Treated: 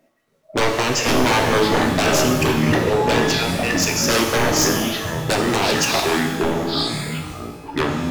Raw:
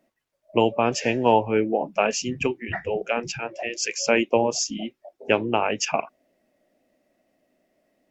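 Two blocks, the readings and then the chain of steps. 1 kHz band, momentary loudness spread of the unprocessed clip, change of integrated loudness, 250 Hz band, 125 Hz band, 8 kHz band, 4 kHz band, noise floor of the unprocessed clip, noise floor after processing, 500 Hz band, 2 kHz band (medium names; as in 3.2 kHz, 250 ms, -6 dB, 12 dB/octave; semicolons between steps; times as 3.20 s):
+5.0 dB, 10 LU, +5.5 dB, +8.0 dB, +13.0 dB, no reading, +11.0 dB, -74 dBFS, -61 dBFS, +4.0 dB, +8.0 dB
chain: ever faster or slower copies 277 ms, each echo -6 st, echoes 3, each echo -6 dB; wavefolder -19.5 dBFS; pitch-shifted reverb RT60 1.1 s, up +12 st, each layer -8 dB, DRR 2.5 dB; trim +6.5 dB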